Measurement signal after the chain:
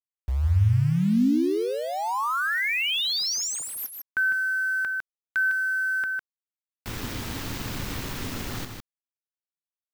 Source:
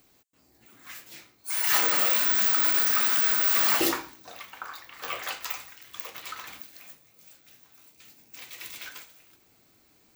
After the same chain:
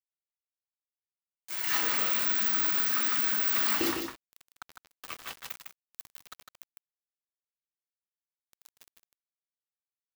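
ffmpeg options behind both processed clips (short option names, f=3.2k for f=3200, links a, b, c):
-af "equalizer=f=100:t=o:w=0.67:g=7,equalizer=f=250:t=o:w=0.67:g=6,equalizer=f=630:t=o:w=0.67:g=-6,equalizer=f=10k:t=o:w=0.67:g=-11,aeval=exprs='val(0)*gte(abs(val(0)),0.0299)':c=same,aecho=1:1:154:0.501,volume=-5dB"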